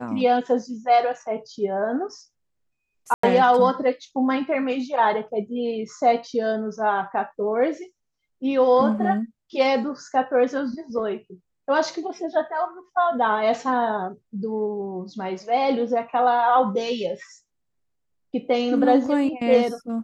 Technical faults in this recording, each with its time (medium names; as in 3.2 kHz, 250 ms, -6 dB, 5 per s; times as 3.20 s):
3.14–3.23 s: dropout 94 ms